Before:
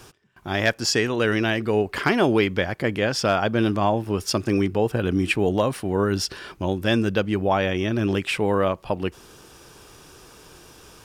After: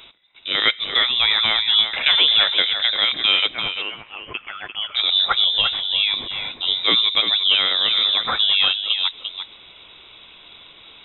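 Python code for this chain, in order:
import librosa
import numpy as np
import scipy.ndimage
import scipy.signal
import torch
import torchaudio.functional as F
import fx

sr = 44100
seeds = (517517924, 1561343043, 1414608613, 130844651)

y = fx.highpass(x, sr, hz=fx.line((3.46, 1500.0), (4.95, 610.0)), slope=24, at=(3.46, 4.95), fade=0.02)
y = fx.tilt_eq(y, sr, slope=1.5, at=(5.46, 6.68))
y = y + 10.0 ** (-8.5 / 20.0) * np.pad(y, (int(346 * sr / 1000.0), 0))[:len(y)]
y = fx.rev_fdn(y, sr, rt60_s=1.1, lf_ratio=1.05, hf_ratio=0.3, size_ms=70.0, drr_db=19.5)
y = fx.freq_invert(y, sr, carrier_hz=3800)
y = y * librosa.db_to_amplitude(3.0)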